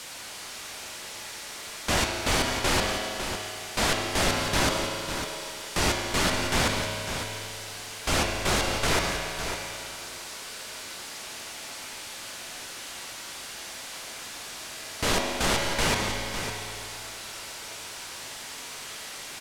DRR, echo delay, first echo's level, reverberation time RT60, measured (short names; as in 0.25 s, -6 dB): -1.0 dB, 0.553 s, -9.0 dB, 2.6 s